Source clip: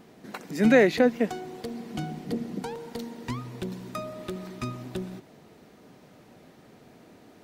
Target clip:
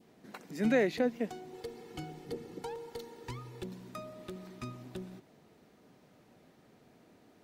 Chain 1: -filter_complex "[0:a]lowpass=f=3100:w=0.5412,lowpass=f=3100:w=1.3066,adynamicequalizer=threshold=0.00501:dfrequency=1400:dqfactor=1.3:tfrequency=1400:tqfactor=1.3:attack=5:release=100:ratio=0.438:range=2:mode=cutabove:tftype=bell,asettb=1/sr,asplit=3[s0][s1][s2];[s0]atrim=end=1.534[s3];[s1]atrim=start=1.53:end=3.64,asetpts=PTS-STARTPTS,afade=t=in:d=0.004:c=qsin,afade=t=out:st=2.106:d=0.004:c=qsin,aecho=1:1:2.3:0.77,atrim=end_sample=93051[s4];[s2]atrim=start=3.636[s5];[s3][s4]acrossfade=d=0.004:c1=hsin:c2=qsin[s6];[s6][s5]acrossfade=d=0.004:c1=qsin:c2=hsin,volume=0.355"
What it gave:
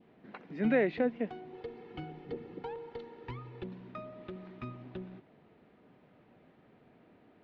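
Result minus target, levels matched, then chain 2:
4 kHz band -6.0 dB
-filter_complex "[0:a]adynamicequalizer=threshold=0.00501:dfrequency=1400:dqfactor=1.3:tfrequency=1400:tqfactor=1.3:attack=5:release=100:ratio=0.438:range=2:mode=cutabove:tftype=bell,asettb=1/sr,asplit=3[s0][s1][s2];[s0]atrim=end=1.534[s3];[s1]atrim=start=1.53:end=3.64,asetpts=PTS-STARTPTS,afade=t=in:d=0.004:c=qsin,afade=t=out:st=2.106:d=0.004:c=qsin,aecho=1:1:2.3:0.77,atrim=end_sample=93051[s4];[s2]atrim=start=3.636[s5];[s3][s4]acrossfade=d=0.004:c1=hsin:c2=qsin[s6];[s6][s5]acrossfade=d=0.004:c1=qsin:c2=hsin,volume=0.355"

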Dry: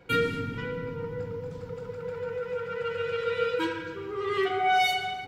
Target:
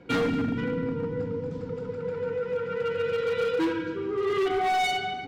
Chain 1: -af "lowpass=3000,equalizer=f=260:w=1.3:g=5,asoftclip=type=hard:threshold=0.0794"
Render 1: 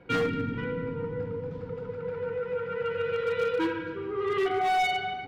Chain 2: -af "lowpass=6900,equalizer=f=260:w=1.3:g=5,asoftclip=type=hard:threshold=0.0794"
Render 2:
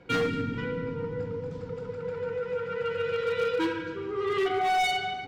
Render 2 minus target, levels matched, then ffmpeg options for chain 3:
250 Hz band -3.0 dB
-af "lowpass=6900,equalizer=f=260:w=1.3:g=12.5,asoftclip=type=hard:threshold=0.0794"

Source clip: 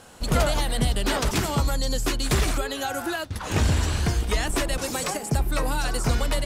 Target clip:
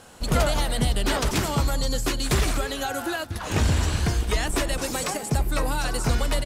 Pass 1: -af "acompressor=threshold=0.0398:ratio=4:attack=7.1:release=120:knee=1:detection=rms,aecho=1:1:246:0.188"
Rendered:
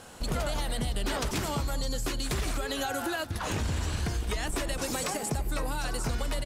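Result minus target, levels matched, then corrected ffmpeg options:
compression: peak gain reduction +11 dB
-af "aecho=1:1:246:0.188"

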